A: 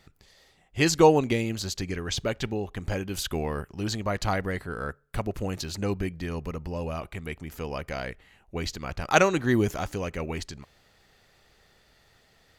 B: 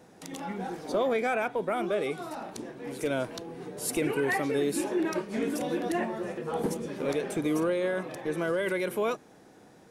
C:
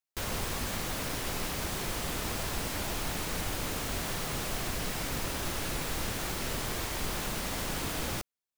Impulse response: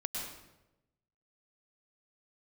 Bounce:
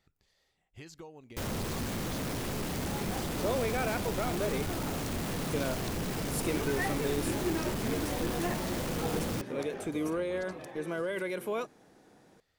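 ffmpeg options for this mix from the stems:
-filter_complex "[0:a]acompressor=threshold=-30dB:ratio=12,volume=-15dB[a];[1:a]adelay=2500,volume=-5dB[b];[2:a]equalizer=f=200:w=0.4:g=10.5,asoftclip=type=tanh:threshold=-29.5dB,adelay=1200,volume=-1dB[c];[a][b][c]amix=inputs=3:normalize=0"

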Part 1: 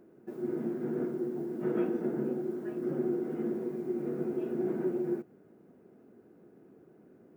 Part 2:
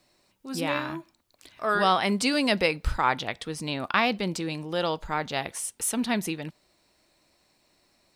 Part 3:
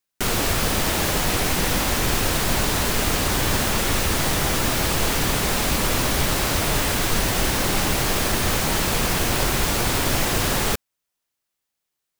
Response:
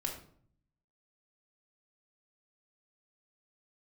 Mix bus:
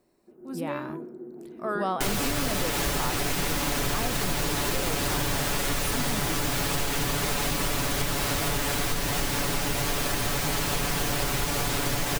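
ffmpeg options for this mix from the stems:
-filter_complex "[0:a]lowpass=1.4k,bandreject=f=50:t=h:w=6,bandreject=f=100:t=h:w=6,bandreject=f=150:t=h:w=6,dynaudnorm=f=480:g=3:m=6dB,volume=-13dB[a];[1:a]equalizer=f=3.8k:t=o:w=2.2:g=-13,volume=-1.5dB[b];[2:a]aecho=1:1:7:0.65,adelay=1800,volume=-2dB[c];[a][b][c]amix=inputs=3:normalize=0,acompressor=threshold=-23dB:ratio=6"

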